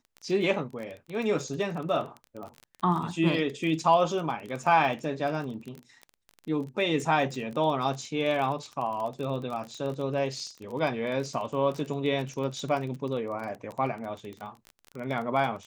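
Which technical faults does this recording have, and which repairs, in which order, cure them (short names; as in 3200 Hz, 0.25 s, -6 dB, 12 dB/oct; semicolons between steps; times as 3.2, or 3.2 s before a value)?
crackle 24/s -33 dBFS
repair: de-click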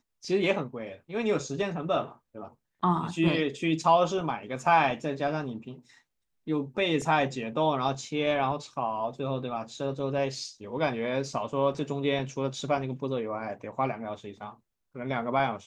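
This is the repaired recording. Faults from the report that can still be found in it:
none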